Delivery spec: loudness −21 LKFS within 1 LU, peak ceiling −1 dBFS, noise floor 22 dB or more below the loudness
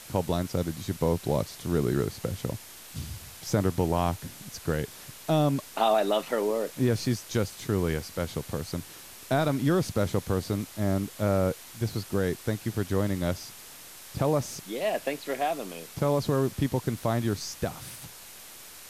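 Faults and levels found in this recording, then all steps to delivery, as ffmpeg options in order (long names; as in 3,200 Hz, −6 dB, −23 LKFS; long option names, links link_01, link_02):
background noise floor −47 dBFS; target noise floor −51 dBFS; integrated loudness −29.0 LKFS; sample peak −11.5 dBFS; target loudness −21.0 LKFS
→ -af "afftdn=noise_reduction=6:noise_floor=-47"
-af "volume=8dB"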